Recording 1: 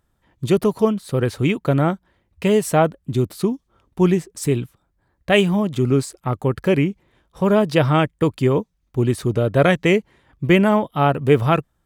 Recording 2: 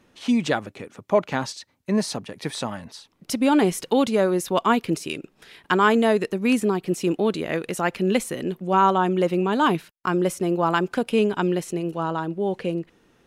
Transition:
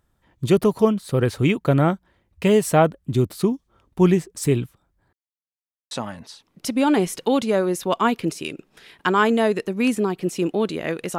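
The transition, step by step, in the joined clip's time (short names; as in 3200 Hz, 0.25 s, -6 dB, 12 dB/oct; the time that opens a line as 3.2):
recording 1
5.13–5.91 mute
5.91 switch to recording 2 from 2.56 s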